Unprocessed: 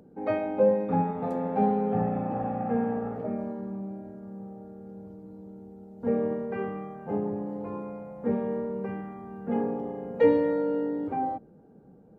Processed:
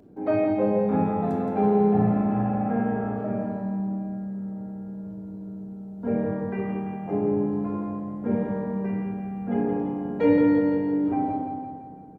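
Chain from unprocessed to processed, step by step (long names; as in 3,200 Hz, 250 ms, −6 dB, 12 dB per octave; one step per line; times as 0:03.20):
on a send: repeating echo 170 ms, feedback 54%, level −6 dB
on the sum: rectangular room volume 2,200 cubic metres, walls furnished, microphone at 3 metres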